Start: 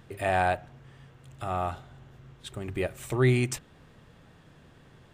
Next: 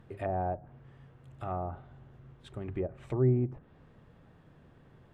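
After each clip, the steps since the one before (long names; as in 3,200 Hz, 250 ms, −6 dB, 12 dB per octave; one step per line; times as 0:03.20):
treble cut that deepens with the level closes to 650 Hz, closed at −25 dBFS
parametric band 7,200 Hz −13 dB 2.9 octaves
level −2.5 dB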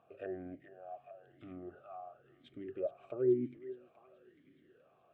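feedback echo with a high-pass in the loop 424 ms, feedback 70%, high-pass 700 Hz, level −10.5 dB
formant filter swept between two vowels a-i 1 Hz
level +5.5 dB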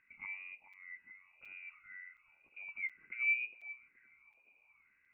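voice inversion scrambler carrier 2,700 Hz
regular buffer underruns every 0.72 s, samples 256, zero, from 0:00.73
level −3.5 dB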